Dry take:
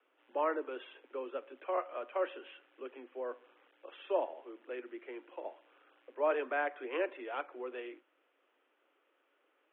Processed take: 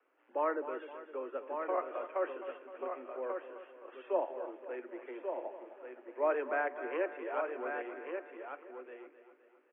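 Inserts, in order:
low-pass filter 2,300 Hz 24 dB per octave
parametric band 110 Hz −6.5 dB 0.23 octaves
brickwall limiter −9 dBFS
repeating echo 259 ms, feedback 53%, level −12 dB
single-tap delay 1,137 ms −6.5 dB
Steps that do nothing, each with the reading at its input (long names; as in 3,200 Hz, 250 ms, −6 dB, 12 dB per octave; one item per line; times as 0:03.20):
parametric band 110 Hz: nothing at its input below 240 Hz
brickwall limiter −9 dBFS: peak of its input −19.5 dBFS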